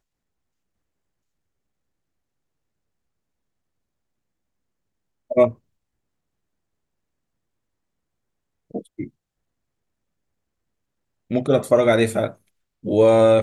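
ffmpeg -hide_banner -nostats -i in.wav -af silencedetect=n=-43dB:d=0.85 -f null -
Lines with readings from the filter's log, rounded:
silence_start: 0.00
silence_end: 5.30 | silence_duration: 5.30
silence_start: 5.54
silence_end: 8.71 | silence_duration: 3.17
silence_start: 9.09
silence_end: 11.30 | silence_duration: 2.21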